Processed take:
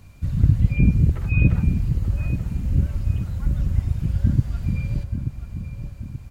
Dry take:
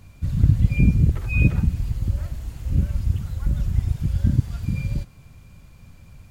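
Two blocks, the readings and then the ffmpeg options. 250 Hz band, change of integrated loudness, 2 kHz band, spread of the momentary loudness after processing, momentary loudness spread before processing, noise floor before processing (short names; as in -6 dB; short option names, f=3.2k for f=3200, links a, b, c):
+1.0 dB, +0.5 dB, -1.5 dB, 15 LU, 10 LU, -47 dBFS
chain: -filter_complex "[0:a]acrossover=split=3200[a][b];[b]acompressor=threshold=-54dB:ratio=4:attack=1:release=60[c];[a][c]amix=inputs=2:normalize=0,bandreject=f=3.4k:w=25,asplit=2[d][e];[e]adelay=881,lowpass=f=1.7k:p=1,volume=-8dB,asplit=2[f][g];[g]adelay=881,lowpass=f=1.7k:p=1,volume=0.46,asplit=2[h][i];[i]adelay=881,lowpass=f=1.7k:p=1,volume=0.46,asplit=2[j][k];[k]adelay=881,lowpass=f=1.7k:p=1,volume=0.46,asplit=2[l][m];[m]adelay=881,lowpass=f=1.7k:p=1,volume=0.46[n];[f][h][j][l][n]amix=inputs=5:normalize=0[o];[d][o]amix=inputs=2:normalize=0"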